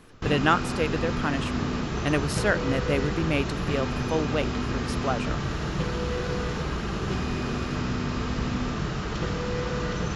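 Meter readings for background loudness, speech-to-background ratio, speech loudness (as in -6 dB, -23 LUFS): -29.5 LUFS, 1.0 dB, -28.5 LUFS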